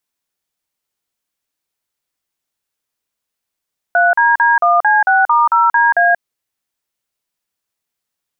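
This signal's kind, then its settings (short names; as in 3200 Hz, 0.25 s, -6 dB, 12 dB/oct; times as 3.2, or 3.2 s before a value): DTMF "3DD1C6*0DA", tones 0.182 s, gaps 42 ms, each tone -11 dBFS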